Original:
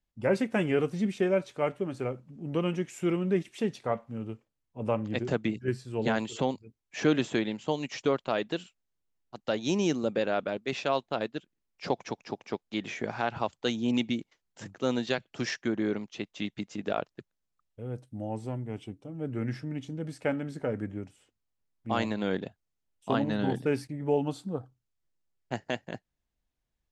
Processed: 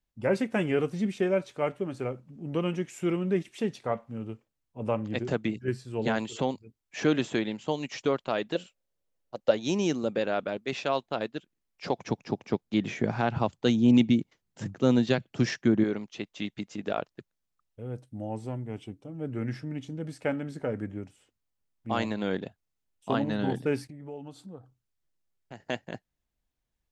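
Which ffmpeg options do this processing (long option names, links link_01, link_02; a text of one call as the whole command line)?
ffmpeg -i in.wav -filter_complex "[0:a]asettb=1/sr,asplit=3[link_01][link_02][link_03];[link_01]atrim=end=8.554[link_04];[link_02]atrim=start=8.55:end=9.51,asetpts=PTS-STARTPTS,afade=type=in:duration=0.004:curve=qsin,afade=type=out:start_time=0.956:duration=0.004:curve=qsin,equalizer=frequency=540:width_type=o:width=0.48:gain=13.5[link_05];[link_03]atrim=start=9.506[link_06];[link_04][link_05]acrossfade=duration=0.004:curve1=hsin:curve2=qsin[link_07];[link_07][link_06]acrossfade=duration=0.004:curve1=qsin:curve2=hsin,asettb=1/sr,asplit=3[link_08][link_09][link_10];[link_08]atrim=end=11.994[link_11];[link_09]atrim=start=11.99:end=15.84,asetpts=PTS-STARTPTS,afade=type=in:duration=0.004:curve=qsin,afade=type=out:start_time=3.846:duration=0.004:curve=qsin,equalizer=frequency=130:width=0.43:gain=11[link_12];[link_10]atrim=start=15.836[link_13];[link_11][link_12]acrossfade=duration=0.004:curve1=hsin:curve2=qsin[link_14];[link_14][link_13]acrossfade=duration=0.004:curve1=qsin:curve2=hsin,asettb=1/sr,asplit=3[link_15][link_16][link_17];[link_15]atrim=end=23.904[link_18];[link_16]atrim=start=23.9:end=25.6,asetpts=PTS-STARTPTS,afade=type=in:duration=0.004:curve=qsin,afade=type=out:start_time=1.696:duration=0.004:curve=qsin,acompressor=threshold=-48dB:ratio=2:attack=3.2:release=140:knee=1:detection=peak[link_19];[link_17]atrim=start=25.596[link_20];[link_18][link_19]acrossfade=duration=0.004:curve1=hsin:curve2=qsin[link_21];[link_21][link_20]acrossfade=duration=0.004:curve1=qsin:curve2=hsin" out.wav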